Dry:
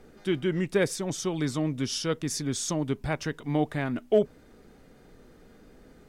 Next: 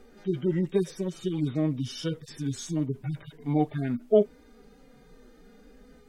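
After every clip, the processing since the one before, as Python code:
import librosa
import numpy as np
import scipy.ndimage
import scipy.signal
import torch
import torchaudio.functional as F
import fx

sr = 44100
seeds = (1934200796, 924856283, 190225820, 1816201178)

y = fx.hpss_only(x, sr, part='harmonic')
y = y * 10.0 ** (2.0 / 20.0)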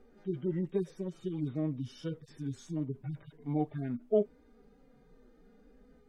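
y = fx.high_shelf(x, sr, hz=2100.0, db=-10.5)
y = y * 10.0 ** (-6.5 / 20.0)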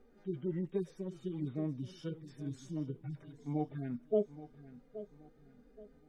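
y = fx.echo_feedback(x, sr, ms=824, feedback_pct=35, wet_db=-15)
y = y * 10.0 ** (-3.5 / 20.0)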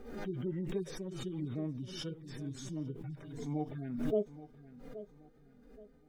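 y = fx.pre_swell(x, sr, db_per_s=49.0)
y = y * 10.0 ** (-1.5 / 20.0)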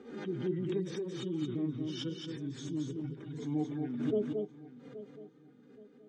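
y = fx.cabinet(x, sr, low_hz=110.0, low_slope=24, high_hz=7300.0, hz=(330.0, 650.0, 3300.0, 5100.0), db=(7, -9, 5, -4))
y = y + 10.0 ** (-4.5 / 20.0) * np.pad(y, (int(224 * sr / 1000.0), 0))[:len(y)]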